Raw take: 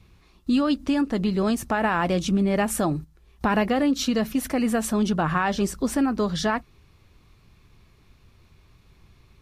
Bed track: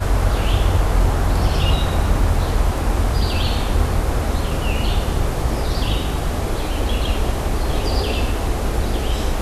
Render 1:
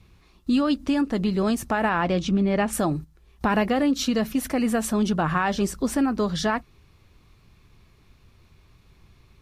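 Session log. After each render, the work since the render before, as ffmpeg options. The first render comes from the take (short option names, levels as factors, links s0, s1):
-filter_complex "[0:a]asettb=1/sr,asplit=3[s0][s1][s2];[s0]atrim=end=1.894[s3];[s1]atrim=start=1.89:end=2.73,asetpts=PTS-STARTPTS,afade=t=in:d=0.004:c=qsin,afade=t=out:st=0.836:d=0.004:c=qsin,lowpass=5200[s4];[s2]atrim=start=2.726[s5];[s3][s4]acrossfade=d=0.004:c1=hsin:c2=qsin[s6];[s6][s5]acrossfade=d=0.004:c1=qsin:c2=hsin"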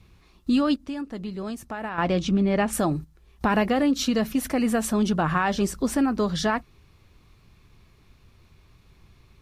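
-filter_complex "[0:a]asplit=3[s0][s1][s2];[s0]atrim=end=0.762[s3];[s1]atrim=start=0.758:end=1.982,asetpts=PTS-STARTPTS,volume=0.335[s4];[s2]atrim=start=1.978[s5];[s3][s4]acrossfade=d=0.004:c1=hsin:c2=hsin[s6];[s6][s5]acrossfade=d=0.004:c1=hsin:c2=hsin"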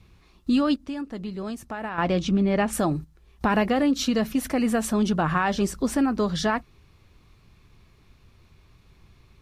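-af "highshelf=f=11000:g=-3.5"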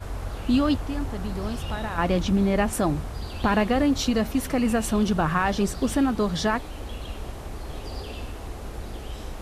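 -filter_complex "[1:a]volume=0.178[s0];[0:a][s0]amix=inputs=2:normalize=0"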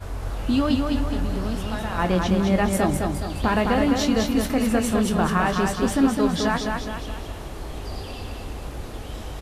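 -filter_complex "[0:a]asplit=2[s0][s1];[s1]adelay=22,volume=0.299[s2];[s0][s2]amix=inputs=2:normalize=0,aecho=1:1:209|418|627|836|1045|1254:0.631|0.303|0.145|0.0698|0.0335|0.0161"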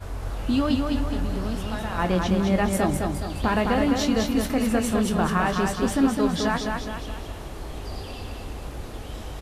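-af "volume=0.841"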